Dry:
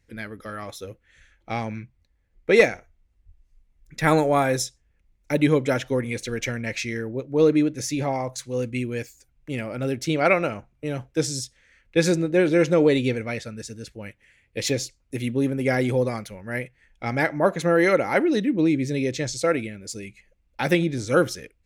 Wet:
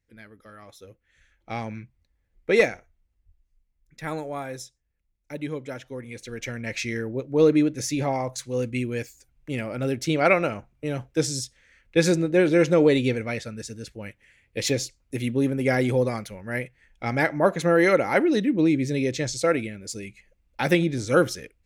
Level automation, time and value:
0:00.60 −12 dB
0:01.60 −3 dB
0:02.66 −3 dB
0:04.09 −12.5 dB
0:05.92 −12.5 dB
0:06.86 0 dB

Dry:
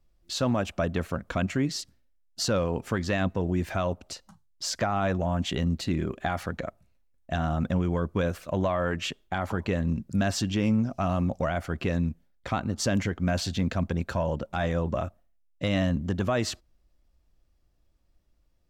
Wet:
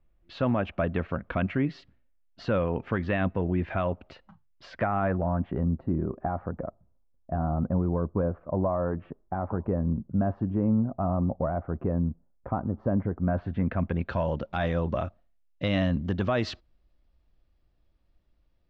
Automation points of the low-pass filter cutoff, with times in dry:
low-pass filter 24 dB per octave
0:04.64 2,800 Hz
0:05.73 1,100 Hz
0:13.15 1,100 Hz
0:13.93 2,700 Hz
0:14.23 4,400 Hz

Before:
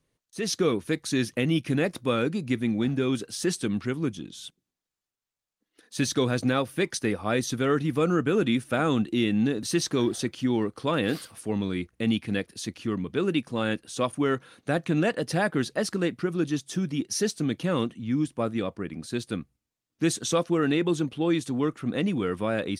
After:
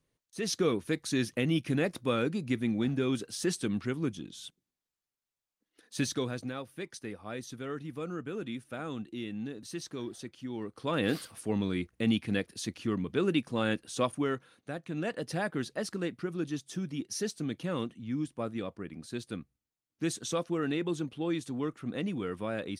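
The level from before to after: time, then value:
0:05.98 −4 dB
0:06.53 −14 dB
0:10.50 −14 dB
0:11.06 −2.5 dB
0:14.03 −2.5 dB
0:14.82 −14 dB
0:15.15 −7.5 dB

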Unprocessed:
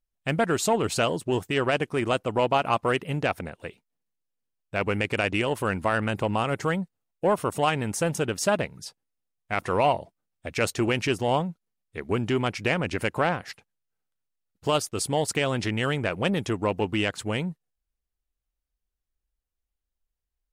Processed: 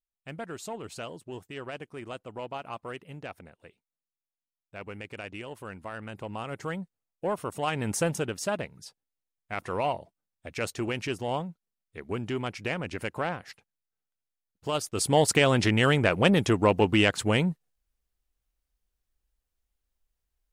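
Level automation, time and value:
0:05.93 −14.5 dB
0:06.82 −7 dB
0:07.62 −7 dB
0:07.93 +0.5 dB
0:08.41 −6.5 dB
0:14.69 −6.5 dB
0:15.17 +4 dB

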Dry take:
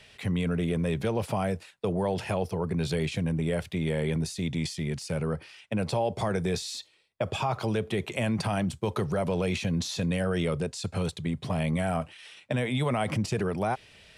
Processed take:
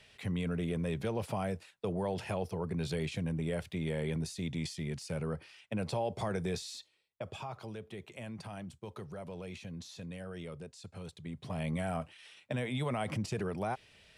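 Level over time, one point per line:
0:06.50 −6.5 dB
0:07.76 −16 dB
0:11.02 −16 dB
0:11.68 −7 dB

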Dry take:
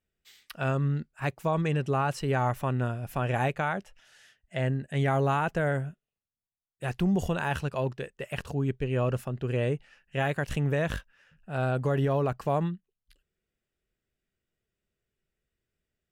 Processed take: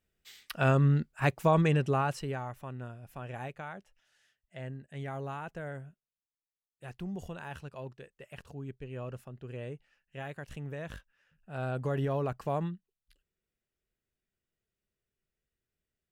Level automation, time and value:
0:01.58 +3 dB
0:02.18 −4 dB
0:02.46 −13 dB
0:10.76 −13 dB
0:11.90 −5 dB

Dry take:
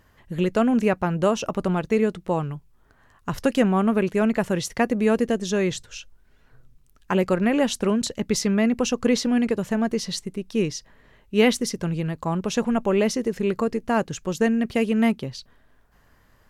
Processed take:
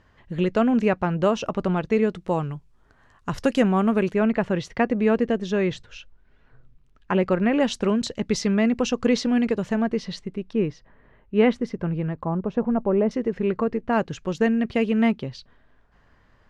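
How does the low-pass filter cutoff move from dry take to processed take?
4,700 Hz
from 0:02.15 7,600 Hz
from 0:04.14 3,200 Hz
from 0:07.60 5,400 Hz
from 0:09.82 3,100 Hz
from 0:10.53 1,800 Hz
from 0:12.25 1,000 Hz
from 0:13.11 2,400 Hz
from 0:13.93 4,100 Hz

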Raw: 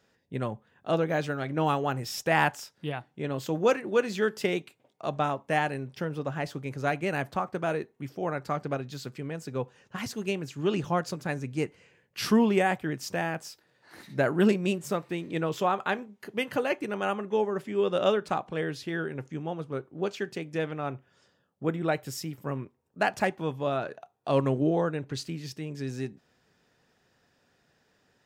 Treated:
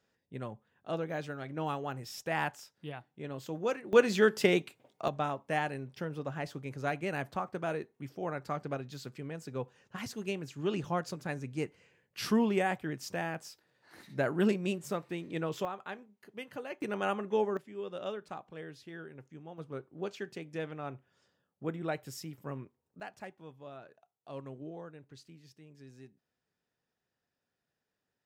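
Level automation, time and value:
−9 dB
from 0:03.93 +2 dB
from 0:05.08 −5.5 dB
from 0:15.65 −13.5 dB
from 0:16.82 −3 dB
from 0:17.57 −14 dB
from 0:19.58 −7.5 dB
from 0:23.00 −19 dB

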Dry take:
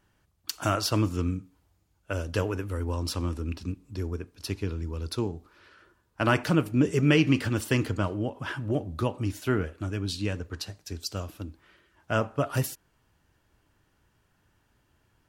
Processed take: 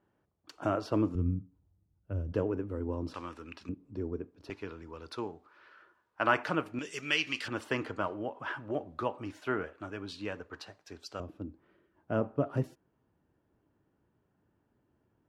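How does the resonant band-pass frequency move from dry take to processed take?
resonant band-pass, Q 0.77
420 Hz
from 0:01.15 120 Hz
from 0:02.32 320 Hz
from 0:03.14 1,500 Hz
from 0:03.69 360 Hz
from 0:04.50 1,100 Hz
from 0:06.79 3,600 Hz
from 0:07.48 970 Hz
from 0:11.20 300 Hz

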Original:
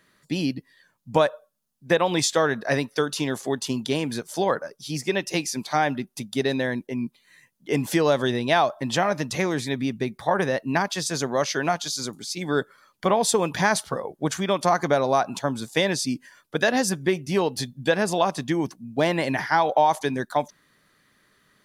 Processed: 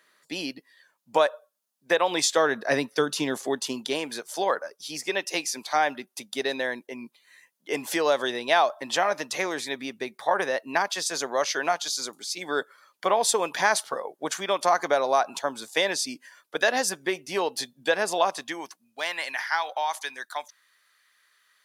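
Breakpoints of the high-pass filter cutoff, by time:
0:02.02 470 Hz
0:03.04 180 Hz
0:04.11 480 Hz
0:18.27 480 Hz
0:18.94 1,300 Hz

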